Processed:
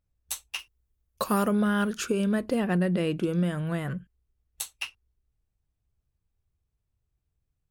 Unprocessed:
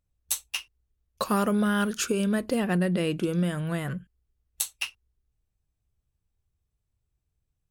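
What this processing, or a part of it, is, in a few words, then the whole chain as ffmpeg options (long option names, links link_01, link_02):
behind a face mask: -filter_complex "[0:a]asettb=1/sr,asplit=3[link_01][link_02][link_03];[link_01]atrim=end=0.594[link_04];[link_02]atrim=start=0.59:end=1.48,asetpts=PTS-STARTPTS,afade=type=in:duration=0.004:curve=qsin,afade=type=out:start_time=0.886:duration=0.004:curve=qsin,highshelf=frequency=8200:gain=11.5[link_05];[link_03]atrim=start=1.476[link_06];[link_04][link_05]acrossfade=duration=0.004:curve1=hsin:curve2=qsin[link_07];[link_07][link_06]acrossfade=duration=0.004:curve1=qsin:curve2=hsin,highshelf=frequency=3300:gain=-6.5"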